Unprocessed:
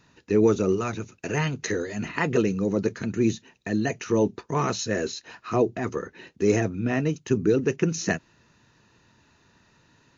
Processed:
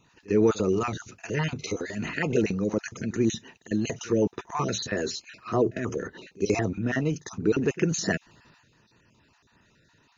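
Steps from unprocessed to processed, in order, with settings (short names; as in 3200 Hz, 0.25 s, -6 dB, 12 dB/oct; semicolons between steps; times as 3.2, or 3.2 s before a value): random spectral dropouts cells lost 27%; pre-echo 51 ms -23 dB; transient shaper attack +1 dB, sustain +7 dB; gain -2 dB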